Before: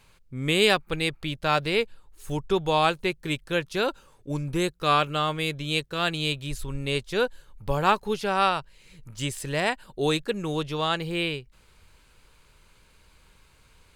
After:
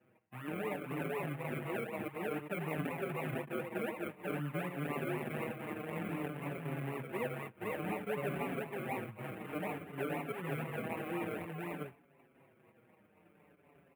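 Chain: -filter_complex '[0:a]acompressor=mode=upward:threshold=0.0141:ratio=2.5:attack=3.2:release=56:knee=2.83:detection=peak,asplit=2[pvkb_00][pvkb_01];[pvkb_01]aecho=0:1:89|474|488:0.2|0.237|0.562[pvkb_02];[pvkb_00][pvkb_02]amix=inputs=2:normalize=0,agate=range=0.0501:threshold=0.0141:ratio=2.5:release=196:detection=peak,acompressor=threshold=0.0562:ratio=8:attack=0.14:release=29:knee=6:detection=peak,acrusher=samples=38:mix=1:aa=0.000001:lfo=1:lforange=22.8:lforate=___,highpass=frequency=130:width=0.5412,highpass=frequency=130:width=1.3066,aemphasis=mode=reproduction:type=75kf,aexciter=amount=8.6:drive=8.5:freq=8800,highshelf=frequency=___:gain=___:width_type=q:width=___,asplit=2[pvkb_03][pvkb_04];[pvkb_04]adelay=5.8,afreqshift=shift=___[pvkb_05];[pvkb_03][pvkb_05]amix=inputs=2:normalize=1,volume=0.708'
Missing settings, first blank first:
4, 3400, -11, 3, -0.55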